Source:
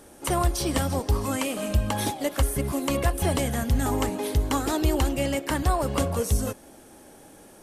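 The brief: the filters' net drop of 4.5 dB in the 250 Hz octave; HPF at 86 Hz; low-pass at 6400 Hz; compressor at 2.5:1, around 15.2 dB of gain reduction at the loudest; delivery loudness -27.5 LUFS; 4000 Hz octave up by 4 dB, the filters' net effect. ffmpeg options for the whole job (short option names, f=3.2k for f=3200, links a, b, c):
-af "highpass=86,lowpass=6.4k,equalizer=f=250:t=o:g=-5.5,equalizer=f=4k:t=o:g=6,acompressor=threshold=-46dB:ratio=2.5,volume=15dB"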